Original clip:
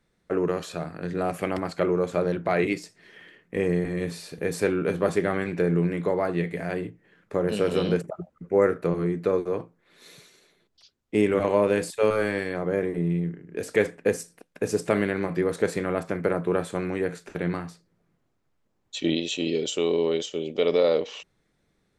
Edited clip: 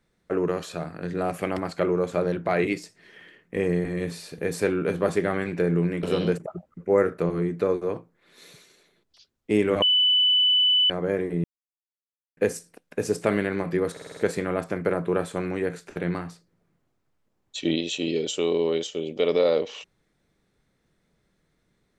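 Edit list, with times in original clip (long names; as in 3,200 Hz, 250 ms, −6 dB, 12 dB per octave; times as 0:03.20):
0:06.03–0:07.67: remove
0:11.46–0:12.54: beep over 2,990 Hz −16.5 dBFS
0:13.08–0:14.01: silence
0:15.56: stutter 0.05 s, 6 plays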